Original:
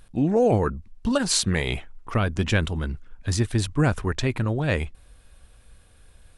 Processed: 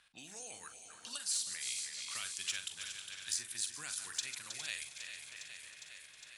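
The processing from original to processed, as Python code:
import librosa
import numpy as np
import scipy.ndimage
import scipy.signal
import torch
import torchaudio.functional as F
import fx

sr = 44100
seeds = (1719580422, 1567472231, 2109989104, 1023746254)

y = fx.reverse_delay_fb(x, sr, ms=158, feedback_pct=70, wet_db=-11.0)
y = fx.env_lowpass(y, sr, base_hz=1900.0, full_db=-21.5)
y = np.diff(y, prepend=0.0)
y = fx.rider(y, sr, range_db=4, speed_s=0.5)
y = 10.0 ** (-14.5 / 20.0) * np.tanh(y / 10.0 ** (-14.5 / 20.0))
y = fx.tone_stack(y, sr, knobs='5-5-5')
y = fx.doubler(y, sr, ms=42.0, db=-10)
y = fx.echo_feedback(y, sr, ms=408, feedback_pct=50, wet_db=-15.5)
y = fx.band_squash(y, sr, depth_pct=70)
y = y * librosa.db_to_amplitude(3.0)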